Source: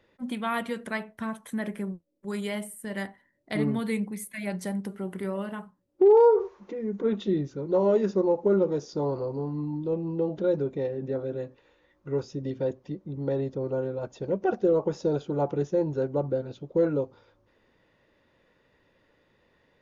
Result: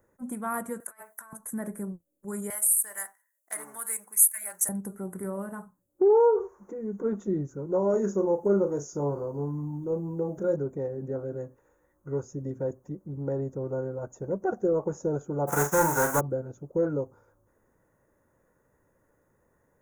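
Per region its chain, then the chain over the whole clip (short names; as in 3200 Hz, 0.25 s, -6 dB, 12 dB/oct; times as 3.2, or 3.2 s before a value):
0.8–1.33 HPF 960 Hz + high shelf 9700 Hz +9.5 dB + negative-ratio compressor -47 dBFS
2.5–4.69 high shelf 3800 Hz +8.5 dB + sample leveller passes 1 + HPF 1200 Hz
7.9–10.56 high shelf 3400 Hz +7 dB + notch 4200 Hz, Q 8.9 + doubler 35 ms -9 dB
15.47–16.19 spectral whitening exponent 0.3 + overdrive pedal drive 19 dB, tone 2100 Hz, clips at -10.5 dBFS + doubler 42 ms -6.5 dB
whole clip: EQ curve 130 Hz 0 dB, 230 Hz -3 dB, 1500 Hz -2 dB, 2900 Hz -25 dB, 4500 Hz -24 dB, 6500 Hz +5 dB, 11000 Hz +12 dB; ending taper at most 550 dB/s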